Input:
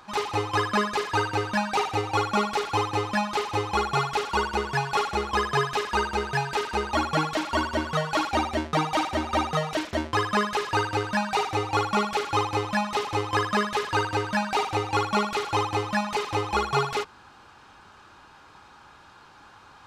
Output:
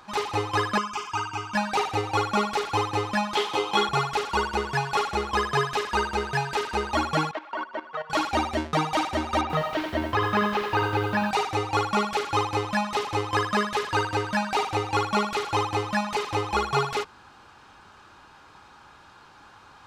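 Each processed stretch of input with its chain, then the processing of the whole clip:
0.78–1.55 s: bass shelf 450 Hz -7 dB + static phaser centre 2.7 kHz, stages 8
3.35–3.89 s: high-pass 150 Hz 24 dB/octave + peaking EQ 3.3 kHz +11.5 dB 0.22 oct + doubling 15 ms -4 dB
7.31–8.10 s: band-pass 490–2100 Hz + level held to a coarse grid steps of 15 dB
9.41–11.31 s: low-pass 3.5 kHz + bit-crushed delay 87 ms, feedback 35%, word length 8-bit, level -5.5 dB
whole clip: none

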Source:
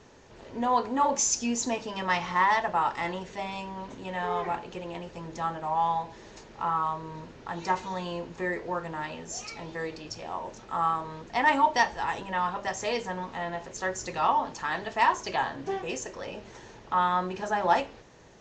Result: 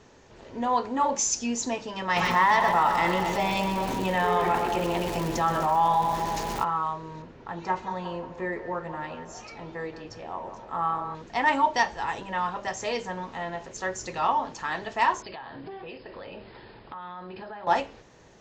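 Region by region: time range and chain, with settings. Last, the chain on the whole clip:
2.15–6.63 s: crackle 280 per s -38 dBFS + two-band feedback delay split 870 Hz, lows 206 ms, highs 124 ms, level -8.5 dB + level flattener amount 50%
7.22–11.15 s: low-pass 2.3 kHz 6 dB/octave + feedback echo behind a band-pass 178 ms, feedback 50%, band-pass 850 Hz, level -9 dB
15.22–17.67 s: flutter echo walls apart 10.6 m, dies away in 0.22 s + compression 10:1, threshold -36 dBFS + brick-wall FIR low-pass 5.2 kHz
whole clip: none

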